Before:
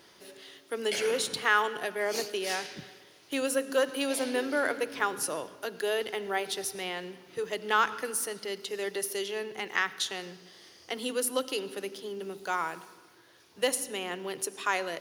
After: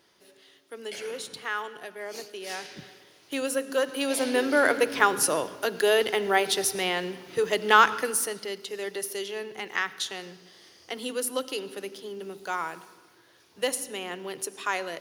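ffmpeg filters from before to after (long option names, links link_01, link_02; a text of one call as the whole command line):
ffmpeg -i in.wav -af "volume=8dB,afade=type=in:start_time=2.35:duration=0.5:silence=0.421697,afade=type=in:start_time=3.88:duration=0.95:silence=0.421697,afade=type=out:start_time=7.74:duration=0.86:silence=0.398107" out.wav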